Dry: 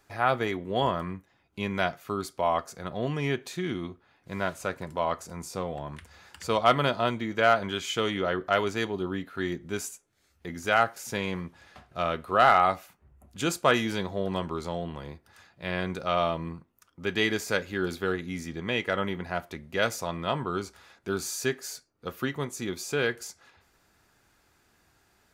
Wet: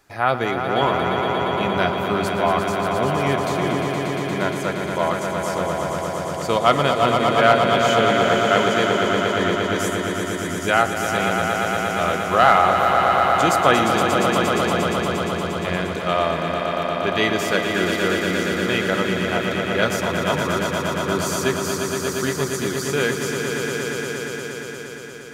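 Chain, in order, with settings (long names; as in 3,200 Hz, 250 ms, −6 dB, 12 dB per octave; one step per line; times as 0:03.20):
mains-hum notches 50/100 Hz
echo that builds up and dies away 117 ms, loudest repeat 5, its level −7 dB
level +5 dB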